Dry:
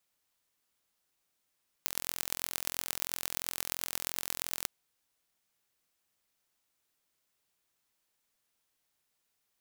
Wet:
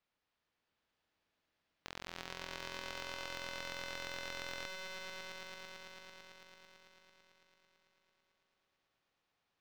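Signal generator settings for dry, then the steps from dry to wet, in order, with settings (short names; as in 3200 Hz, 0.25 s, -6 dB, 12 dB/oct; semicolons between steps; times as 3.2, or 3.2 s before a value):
pulse train 43/s, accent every 5, -3.5 dBFS 2.81 s
limiter -7.5 dBFS; air absorption 220 m; swelling echo 0.111 s, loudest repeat 5, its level -7 dB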